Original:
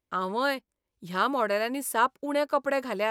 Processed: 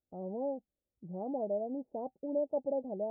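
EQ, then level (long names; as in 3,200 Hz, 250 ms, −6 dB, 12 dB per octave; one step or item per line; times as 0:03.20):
Chebyshev low-pass with heavy ripple 810 Hz, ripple 3 dB
−5.0 dB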